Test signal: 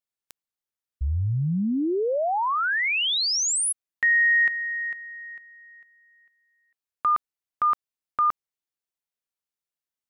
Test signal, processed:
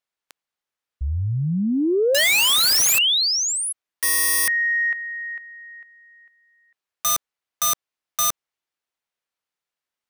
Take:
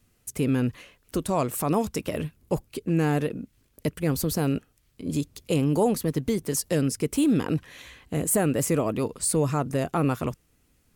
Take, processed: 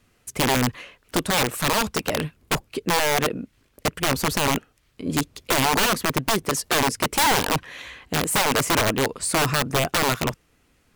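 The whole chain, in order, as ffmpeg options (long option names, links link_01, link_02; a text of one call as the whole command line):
ffmpeg -i in.wav -filter_complex "[0:a]asplit=2[link_01][link_02];[link_02]highpass=frequency=720:poles=1,volume=7dB,asoftclip=type=tanh:threshold=-12dB[link_03];[link_01][link_03]amix=inputs=2:normalize=0,lowpass=frequency=2600:poles=1,volume=-6dB,aeval=exprs='(mod(11.2*val(0)+1,2)-1)/11.2':channel_layout=same,volume=6.5dB" out.wav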